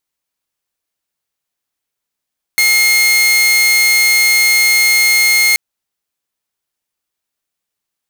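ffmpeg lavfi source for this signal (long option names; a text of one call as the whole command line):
ffmpeg -f lavfi -i "aevalsrc='0.501*(2*mod(2140*t,1)-1)':duration=2.98:sample_rate=44100" out.wav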